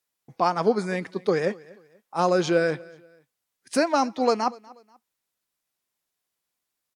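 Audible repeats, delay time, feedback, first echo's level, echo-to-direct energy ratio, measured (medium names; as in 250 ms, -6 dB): 2, 242 ms, 34%, -23.0 dB, -22.5 dB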